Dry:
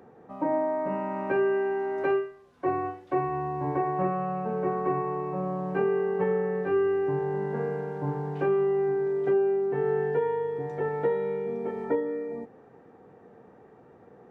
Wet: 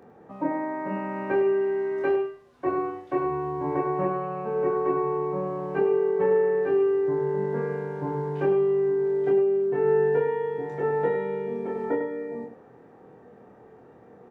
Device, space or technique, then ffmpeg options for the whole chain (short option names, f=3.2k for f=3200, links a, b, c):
slapback doubling: -filter_complex "[0:a]asplit=3[a][b][c];[b]adelay=25,volume=-3dB[d];[c]adelay=100,volume=-8dB[e];[a][d][e]amix=inputs=3:normalize=0"